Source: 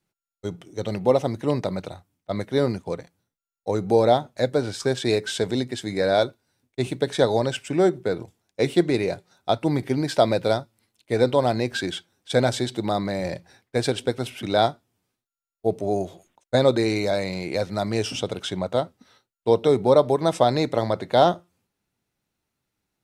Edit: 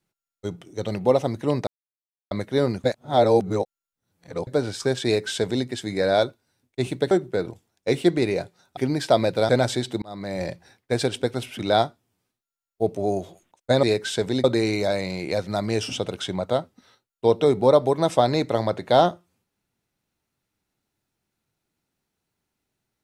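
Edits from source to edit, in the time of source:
1.67–2.31 s: mute
2.84–4.47 s: reverse
5.05–5.66 s: copy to 16.67 s
7.11–7.83 s: delete
9.49–9.85 s: delete
10.57–12.33 s: delete
12.86–13.27 s: fade in linear

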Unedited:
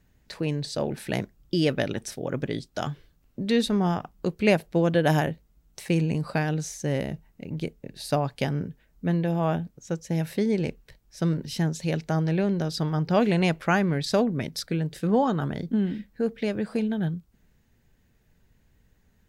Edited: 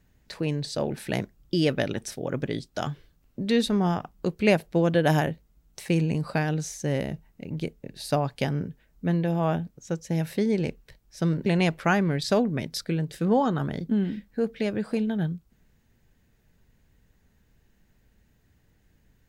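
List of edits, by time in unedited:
11.46–13.28 s: delete

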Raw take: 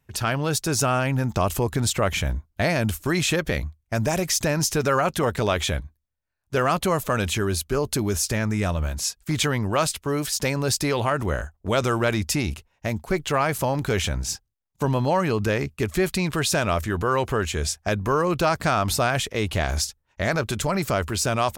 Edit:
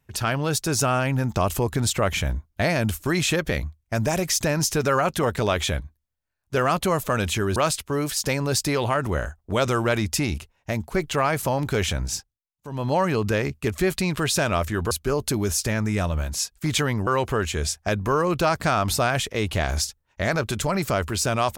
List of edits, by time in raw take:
7.56–9.72 s: move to 17.07 s
14.29–15.10 s: dip -14 dB, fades 0.25 s

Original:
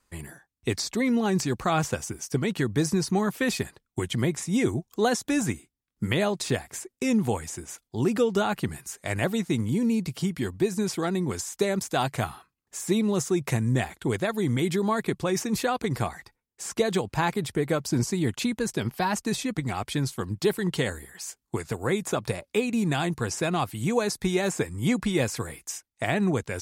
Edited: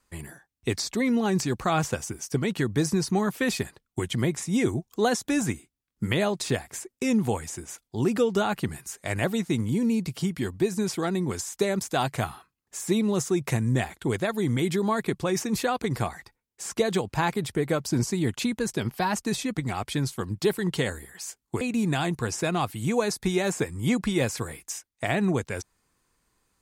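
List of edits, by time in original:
21.61–22.60 s: delete

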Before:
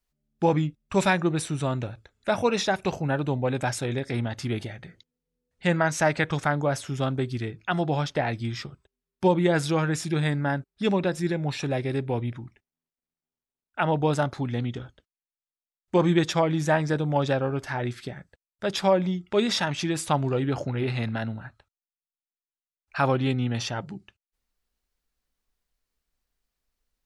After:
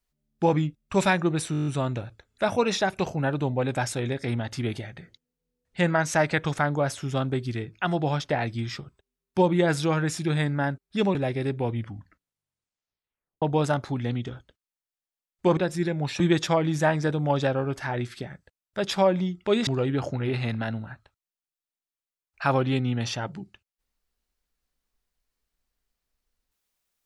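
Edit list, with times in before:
1.52 s: stutter 0.02 s, 8 plays
11.01–11.64 s: move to 16.06 s
12.21 s: tape stop 1.70 s
19.53–20.21 s: delete

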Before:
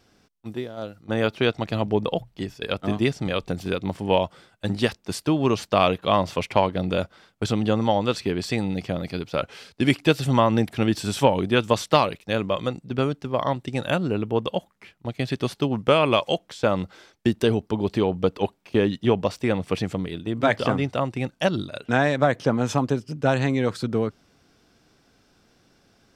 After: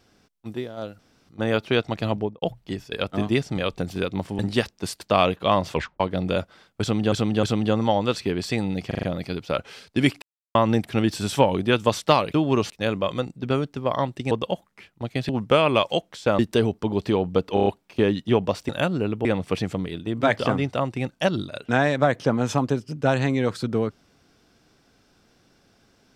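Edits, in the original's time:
0.99 s: insert room tone 0.30 s
1.82–2.12 s: studio fade out
4.09–4.65 s: delete
5.27–5.63 s: move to 12.18 s
6.37 s: tape stop 0.25 s
7.43–7.74 s: loop, 3 plays
8.87 s: stutter 0.04 s, 5 plays
10.06–10.39 s: mute
13.79–14.35 s: move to 19.45 s
15.33–15.66 s: delete
16.76–17.27 s: delete
18.42 s: stutter 0.03 s, 5 plays

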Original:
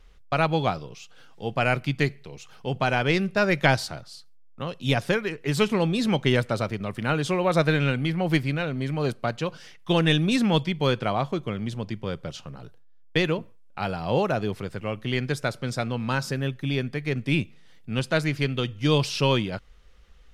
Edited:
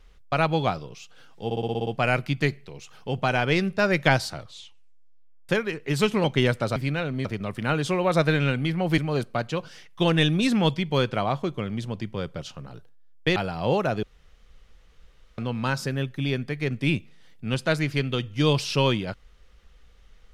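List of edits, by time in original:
1.45 s: stutter 0.06 s, 8 plays
3.92 s: tape stop 1.15 s
5.82–6.13 s: delete
8.38–8.87 s: move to 6.65 s
13.25–13.81 s: delete
14.48–15.83 s: room tone

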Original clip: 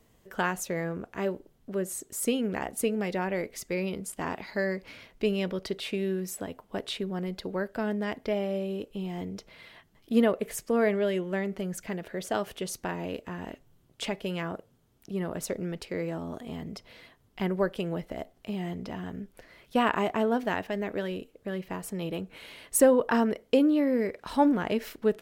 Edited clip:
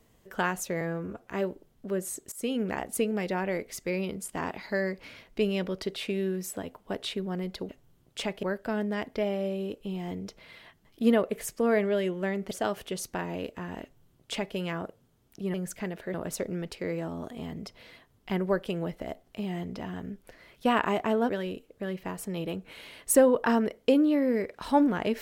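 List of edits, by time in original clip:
0.81–1.13 s: stretch 1.5×
2.16–2.41 s: fade in, from -20 dB
11.61–12.21 s: move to 15.24 s
13.52–14.26 s: copy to 7.53 s
20.39–20.94 s: delete

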